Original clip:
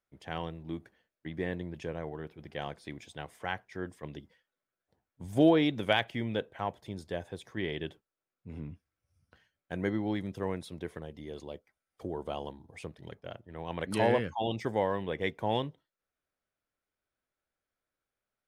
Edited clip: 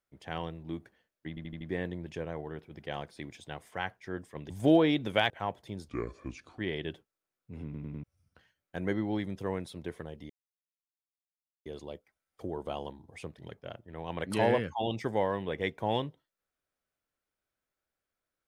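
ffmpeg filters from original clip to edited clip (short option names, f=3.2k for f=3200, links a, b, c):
-filter_complex "[0:a]asplit=14[a][b][c][d][e][f][g][h][i][j][k][l][m][n];[a]atrim=end=1.372[o];[b]atrim=start=1.288:end=1.372[p];[c]atrim=start=1.288:end=1.372[q];[d]atrim=start=1.288:end=1.372[r];[e]atrim=start=1.288:end=4.182[s];[f]atrim=start=5.228:end=6.032[t];[g]atrim=start=6.488:end=7.074[u];[h]atrim=start=7.07:end=7.55,asetpts=PTS-STARTPTS,asetrate=29988,aresample=44100,atrim=end_sample=31129,asetpts=PTS-STARTPTS[v];[i]atrim=start=7.546:end=8.702[w];[j]atrim=start=8.598:end=8.702[x];[k]atrim=start=8.598:end=8.702[y];[l]atrim=start=8.598:end=8.702[z];[m]atrim=start=8.998:end=11.26,asetpts=PTS-STARTPTS,afade=t=out:st=2.258:d=0.004:c=hsin,apad=pad_dur=1.36[aa];[n]atrim=start=11.26,asetpts=PTS-STARTPTS,afade=t=in:d=0.004:c=hsin[ab];[o][p]acrossfade=d=0.004:c1=hsin:c2=hsin[ac];[ac][q]acrossfade=d=0.004:c1=hsin:c2=hsin[ad];[ad][r]acrossfade=d=0.004:c1=hsin:c2=hsin[ae];[ae][s]acrossfade=d=0.004:c1=hsin:c2=hsin[af];[af][t]acrossfade=d=0.004:c1=hsin:c2=hsin[ag];[ag][u]acrossfade=d=0.004:c1=hsin:c2=hsin[ah];[ah][v]acrossfade=d=0.004:c1=hsin:c2=hsin[ai];[ai][w]acrossfade=d=0.004:c1=hsin:c2=hsin[aj];[aj][x]acrossfade=d=0.004:c1=hsin:c2=hsin[ak];[ak][y]acrossfade=d=0.004:c1=hsin:c2=hsin[al];[al][z]acrossfade=d=0.004:c1=hsin:c2=hsin[am];[aa][ab]concat=n=2:v=0:a=1[an];[am][an]acrossfade=d=0.004:c1=hsin:c2=hsin"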